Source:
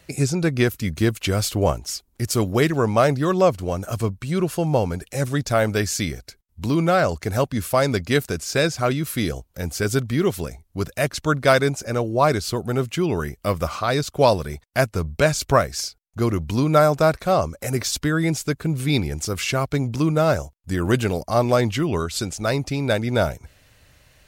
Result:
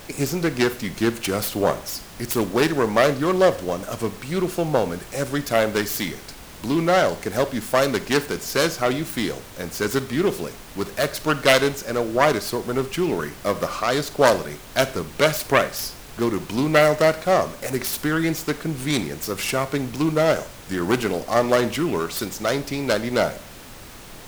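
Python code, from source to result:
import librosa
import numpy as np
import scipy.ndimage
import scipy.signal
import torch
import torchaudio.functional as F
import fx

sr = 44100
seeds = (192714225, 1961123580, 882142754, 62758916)

y = fx.self_delay(x, sr, depth_ms=0.26)
y = scipy.signal.sosfilt(scipy.signal.butter(2, 210.0, 'highpass', fs=sr, output='sos'), y)
y = fx.dmg_noise_colour(y, sr, seeds[0], colour='pink', level_db=-42.0)
y = fx.rev_schroeder(y, sr, rt60_s=0.42, comb_ms=31, drr_db=13.0)
y = F.gain(torch.from_numpy(y), 1.0).numpy()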